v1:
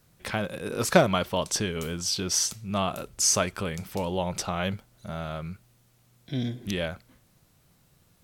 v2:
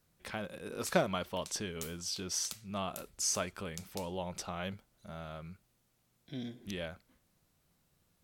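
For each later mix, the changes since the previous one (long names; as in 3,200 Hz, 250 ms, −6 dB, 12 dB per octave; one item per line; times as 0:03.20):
speech −10.0 dB
master: add parametric band 120 Hz −7.5 dB 0.36 octaves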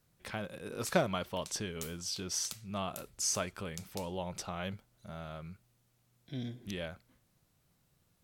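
master: add parametric band 120 Hz +7.5 dB 0.36 octaves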